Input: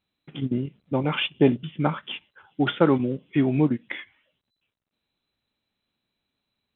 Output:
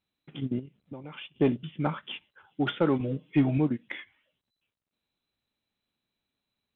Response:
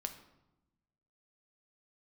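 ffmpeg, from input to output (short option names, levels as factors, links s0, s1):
-filter_complex "[0:a]asettb=1/sr,asplit=3[s0][s1][s2];[s0]atrim=end=0.594[s3];[s1]atrim=start=0.59:end=1.36,asetpts=PTS-STARTPTS,afade=t=in:d=0.004:c=qsin,afade=t=out:st=0.766:d=0.004:c=qsin,acompressor=threshold=0.0178:ratio=8[s4];[s2]atrim=start=1.356[s5];[s3][s4]acrossfade=d=0.004:c1=hsin:c2=qsin[s6];[s6][s5]acrossfade=d=0.004:c1=qsin:c2=hsin,asettb=1/sr,asplit=3[s7][s8][s9];[s7]atrim=end=3.004[s10];[s8]atrim=start=3:end=3.58,asetpts=PTS-STARTPTS,afade=t=in:d=0.004:c=qsin,afade=t=out:st=0.576:d=0.004:c=qsin,aecho=1:1:6.5:0.98,atrim=end_sample=25578[s11];[s9]atrim=start=3.576[s12];[s10][s11]acrossfade=d=0.004:c1=hsin:c2=qsin[s13];[s13][s12]acrossfade=d=0.004:c1=qsin:c2=hsin,asoftclip=type=tanh:threshold=0.422,volume=0.596"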